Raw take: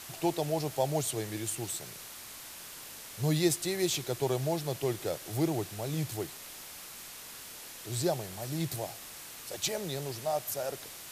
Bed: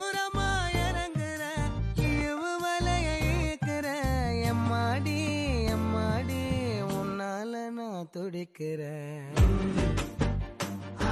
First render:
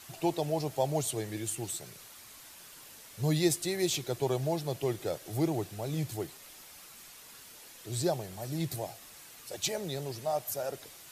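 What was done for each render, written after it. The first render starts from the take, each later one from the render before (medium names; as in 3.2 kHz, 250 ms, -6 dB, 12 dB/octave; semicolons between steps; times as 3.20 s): noise reduction 7 dB, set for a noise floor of -47 dBFS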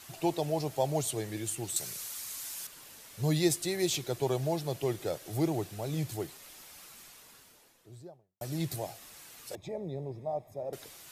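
1.76–2.67 s: FFT filter 480 Hz 0 dB, 3.4 kHz +6 dB, 6.8 kHz +12 dB; 6.87–8.41 s: studio fade out; 9.55–10.73 s: boxcar filter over 30 samples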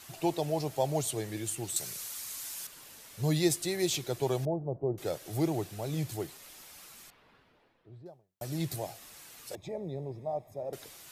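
4.45–4.98 s: inverse Chebyshev low-pass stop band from 4.5 kHz, stop band 80 dB; 7.10–8.06 s: distance through air 380 m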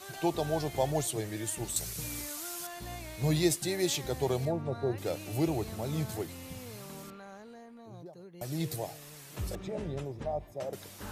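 add bed -15 dB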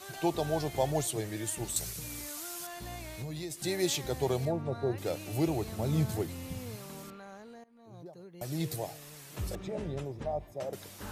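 1.90–3.64 s: compression, threshold -36 dBFS; 5.79–6.76 s: bass shelf 340 Hz +6 dB; 7.64–8.05 s: fade in, from -20 dB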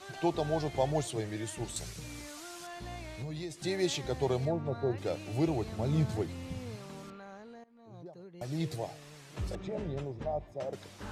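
distance through air 71 m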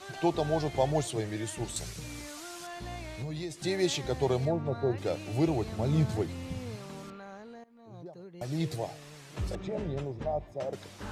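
trim +2.5 dB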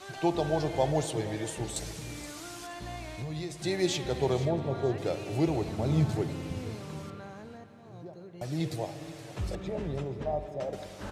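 feedback delay 474 ms, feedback 40%, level -16 dB; spring tank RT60 3.3 s, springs 58 ms, chirp 25 ms, DRR 10 dB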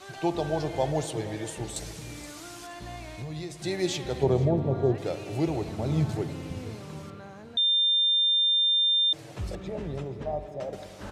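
4.23–4.95 s: tilt shelf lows +6.5 dB; 7.57–9.13 s: bleep 3.6 kHz -20 dBFS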